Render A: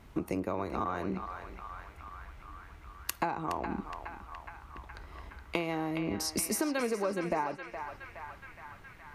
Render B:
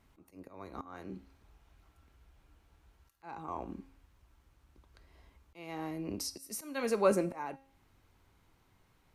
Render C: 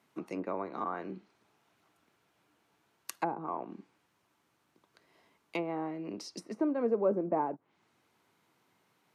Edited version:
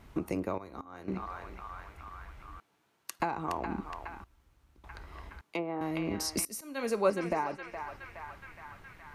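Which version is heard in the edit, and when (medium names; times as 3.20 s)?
A
0.58–1.08 s: from B
2.60–3.20 s: from C
4.24–4.84 s: from B
5.41–5.81 s: from C
6.45–7.10 s: from B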